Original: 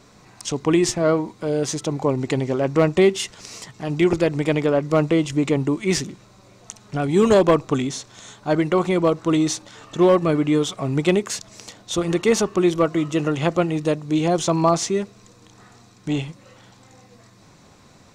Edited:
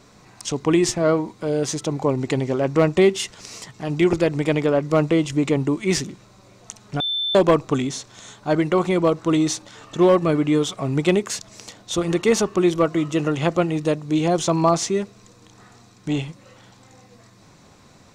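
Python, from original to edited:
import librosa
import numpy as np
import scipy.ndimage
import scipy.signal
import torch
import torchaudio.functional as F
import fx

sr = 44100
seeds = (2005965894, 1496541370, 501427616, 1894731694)

y = fx.edit(x, sr, fx.bleep(start_s=7.0, length_s=0.35, hz=3540.0, db=-21.0), tone=tone)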